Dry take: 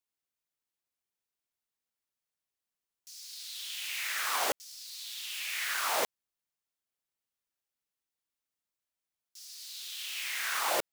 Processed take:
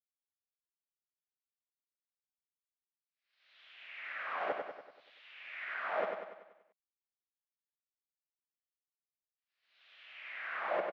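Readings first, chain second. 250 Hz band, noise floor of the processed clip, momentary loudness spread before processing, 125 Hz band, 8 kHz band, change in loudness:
-3.0 dB, under -85 dBFS, 15 LU, n/a, under -40 dB, -6.5 dB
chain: speaker cabinet 150–2200 Hz, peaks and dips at 190 Hz +8 dB, 620 Hz +7 dB, 930 Hz -4 dB; expander -59 dBFS; feedback echo 96 ms, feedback 52%, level -5 dB; gain -5.5 dB

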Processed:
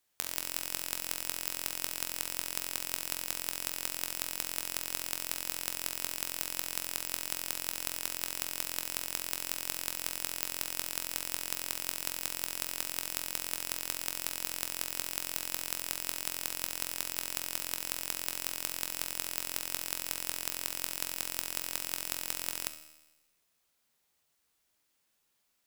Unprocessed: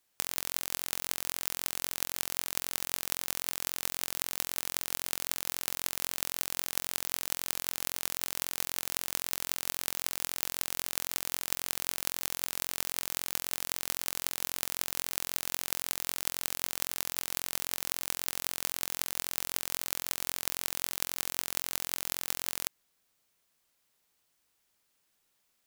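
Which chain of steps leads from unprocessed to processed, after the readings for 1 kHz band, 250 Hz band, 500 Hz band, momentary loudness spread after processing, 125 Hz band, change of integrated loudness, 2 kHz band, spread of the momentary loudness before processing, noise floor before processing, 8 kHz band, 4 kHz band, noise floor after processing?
-2.0 dB, -1.0 dB, -1.5 dB, 1 LU, -2.5 dB, -1.5 dB, -1.5 dB, 1 LU, -75 dBFS, -1.5 dB, -1.5 dB, -76 dBFS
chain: resonator 77 Hz, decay 1.1 s, harmonics all, mix 70%; flutter echo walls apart 11.4 m, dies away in 0.22 s; gain +7 dB

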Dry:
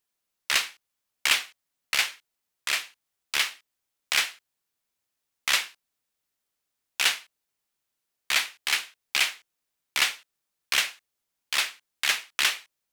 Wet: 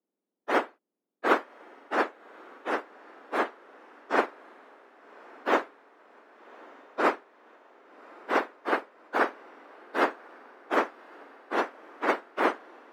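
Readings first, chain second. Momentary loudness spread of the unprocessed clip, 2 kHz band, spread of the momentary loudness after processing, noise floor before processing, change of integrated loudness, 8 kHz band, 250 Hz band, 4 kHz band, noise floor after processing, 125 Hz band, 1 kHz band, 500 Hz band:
12 LU, -5.0 dB, 17 LU, -83 dBFS, -3.5 dB, under -20 dB, +21.0 dB, -19.0 dB, under -85 dBFS, n/a, +9.0 dB, +18.5 dB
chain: spectrum mirrored in octaves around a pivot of 1900 Hz; HPF 300 Hz 24 dB/oct; vibrato 14 Hz 24 cents; on a send: diffused feedback echo 1.148 s, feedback 59%, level -13 dB; on the sum: upward expander 1.5:1, over -39 dBFS

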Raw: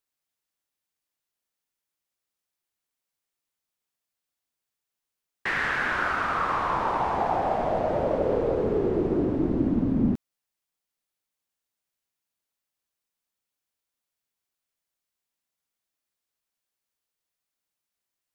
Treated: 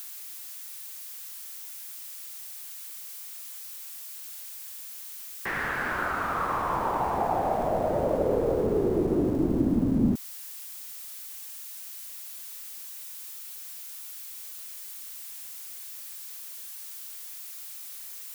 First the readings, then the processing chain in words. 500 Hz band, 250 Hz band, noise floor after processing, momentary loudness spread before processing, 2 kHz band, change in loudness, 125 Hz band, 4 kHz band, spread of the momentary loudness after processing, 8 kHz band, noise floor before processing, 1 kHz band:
-0.5 dB, 0.0 dB, -41 dBFS, 1 LU, -4.0 dB, -6.0 dB, 0.0 dB, +1.0 dB, 12 LU, n/a, under -85 dBFS, -2.0 dB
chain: switching spikes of -28.5 dBFS; high shelf 2200 Hz -11.5 dB; mismatched tape noise reduction encoder only

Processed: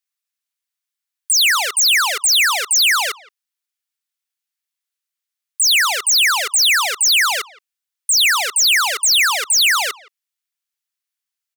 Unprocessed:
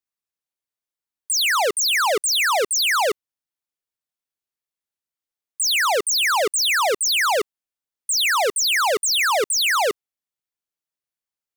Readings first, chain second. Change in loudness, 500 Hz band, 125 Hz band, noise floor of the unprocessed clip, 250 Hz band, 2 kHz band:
+5.0 dB, -11.0 dB, n/a, under -85 dBFS, under -15 dB, +5.0 dB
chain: HPF 1500 Hz 12 dB/oct; speakerphone echo 0.17 s, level -22 dB; gain +6.5 dB

